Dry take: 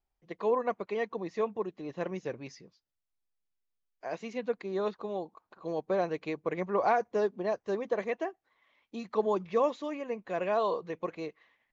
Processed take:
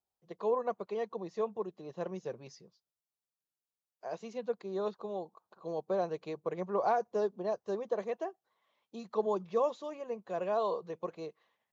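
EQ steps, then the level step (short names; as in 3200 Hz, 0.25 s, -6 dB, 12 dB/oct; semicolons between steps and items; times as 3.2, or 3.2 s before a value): HPF 130 Hz 12 dB/oct; bell 280 Hz -11 dB 0.35 oct; bell 2100 Hz -11.5 dB 0.94 oct; -1.5 dB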